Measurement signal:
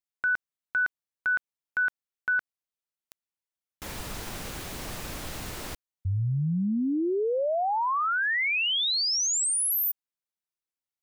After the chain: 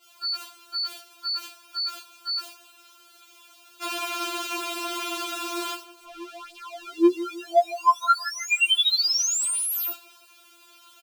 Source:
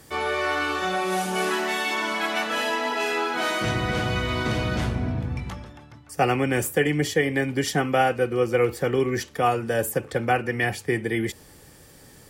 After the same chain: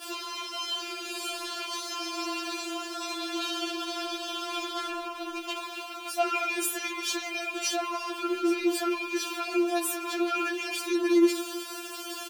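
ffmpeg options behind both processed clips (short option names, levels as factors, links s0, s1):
-filter_complex "[0:a]aeval=exprs='val(0)+0.5*0.0266*sgn(val(0))':c=same,equalizer=f=1900:w=0.81:g=14,asplit=2[s0][s1];[s1]acontrast=71,volume=1.06[s2];[s0][s2]amix=inputs=2:normalize=0,alimiter=limit=0.794:level=0:latency=1:release=51,asoftclip=type=hard:threshold=0.531,highpass=120,highshelf=f=5900:g=-4.5,agate=range=0.0224:threshold=0.141:ratio=3:release=252:detection=peak,acompressor=threshold=0.316:ratio=6:attack=1.5:release=179:knee=6,asuperstop=centerf=1900:order=4:qfactor=2,asplit=2[s3][s4];[s4]adelay=160,lowpass=f=1200:p=1,volume=0.2,asplit=2[s5][s6];[s6]adelay=160,lowpass=f=1200:p=1,volume=0.48,asplit=2[s7][s8];[s8]adelay=160,lowpass=f=1200:p=1,volume=0.48,asplit=2[s9][s10];[s10]adelay=160,lowpass=f=1200:p=1,volume=0.48,asplit=2[s11][s12];[s12]adelay=160,lowpass=f=1200:p=1,volume=0.48[s13];[s3][s5][s7][s9][s11][s13]amix=inputs=6:normalize=0,afftfilt=real='re*4*eq(mod(b,16),0)':imag='im*4*eq(mod(b,16),0)':win_size=2048:overlap=0.75,volume=0.473"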